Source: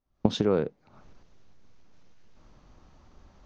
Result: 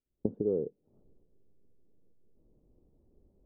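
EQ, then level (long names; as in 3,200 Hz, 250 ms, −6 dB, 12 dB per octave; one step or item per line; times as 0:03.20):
transistor ladder low-pass 500 Hz, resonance 50%
−1.5 dB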